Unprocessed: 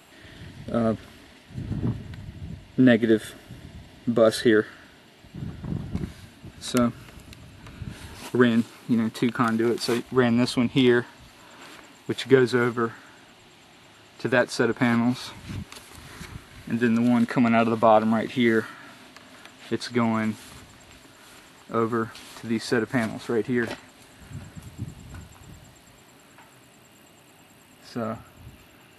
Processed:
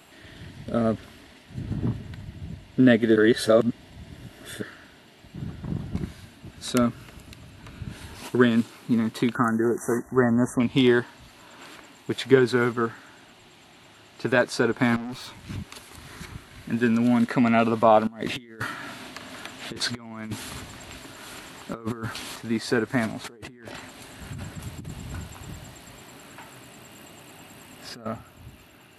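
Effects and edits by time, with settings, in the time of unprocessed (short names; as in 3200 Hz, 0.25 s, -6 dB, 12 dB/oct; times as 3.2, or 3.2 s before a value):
3.16–4.62 reverse
9.35–10.6 brick-wall FIR band-stop 2000–5700 Hz
14.96–15.5 tube stage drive 32 dB, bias 0.5
18.07–22.36 negative-ratio compressor -31 dBFS, ratio -0.5
23.24–28.06 negative-ratio compressor -39 dBFS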